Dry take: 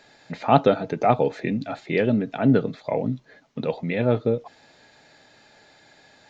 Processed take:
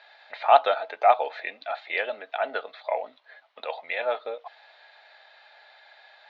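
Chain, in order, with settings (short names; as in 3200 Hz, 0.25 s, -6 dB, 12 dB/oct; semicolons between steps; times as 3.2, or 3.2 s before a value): elliptic band-pass 660–3900 Hz, stop band 70 dB; gain +2.5 dB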